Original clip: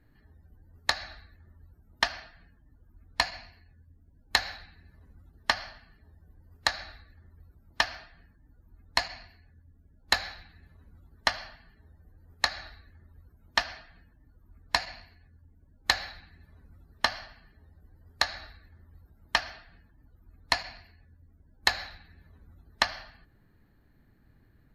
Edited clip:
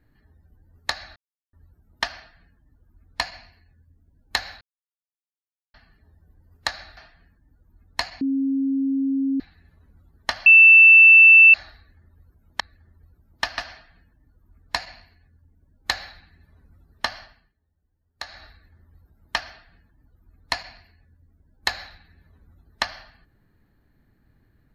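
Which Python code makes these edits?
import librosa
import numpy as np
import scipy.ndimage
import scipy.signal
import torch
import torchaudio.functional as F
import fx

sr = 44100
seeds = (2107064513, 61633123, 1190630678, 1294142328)

y = fx.edit(x, sr, fx.silence(start_s=1.16, length_s=0.37),
    fx.silence(start_s=4.61, length_s=1.13),
    fx.move(start_s=6.97, length_s=0.98, to_s=13.58),
    fx.bleep(start_s=9.19, length_s=1.19, hz=271.0, db=-19.5),
    fx.bleep(start_s=11.44, length_s=1.08, hz=2660.0, db=-6.5),
    fx.fade_down_up(start_s=17.22, length_s=1.24, db=-17.5, fade_s=0.32), tone=tone)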